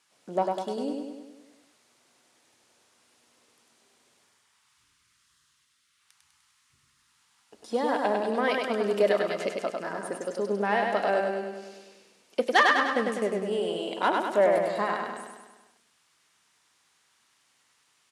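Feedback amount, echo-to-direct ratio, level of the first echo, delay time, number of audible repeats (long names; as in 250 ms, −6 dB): 58%, −1.5 dB, −3.5 dB, 100 ms, 7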